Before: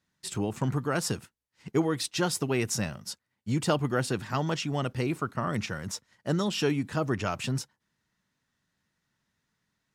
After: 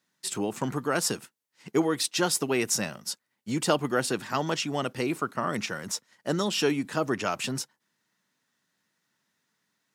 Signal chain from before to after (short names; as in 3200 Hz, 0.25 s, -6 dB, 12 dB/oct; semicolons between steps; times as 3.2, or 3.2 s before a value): HPF 220 Hz 12 dB/oct; high shelf 6300 Hz +4.5 dB; gain +2.5 dB